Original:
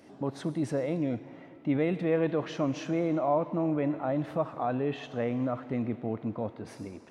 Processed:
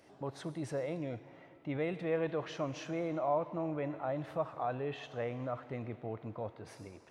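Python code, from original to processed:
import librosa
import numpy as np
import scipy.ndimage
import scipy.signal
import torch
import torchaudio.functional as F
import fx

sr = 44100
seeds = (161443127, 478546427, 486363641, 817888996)

y = fx.peak_eq(x, sr, hz=240.0, db=-10.0, octaves=0.95)
y = y * 10.0 ** (-4.0 / 20.0)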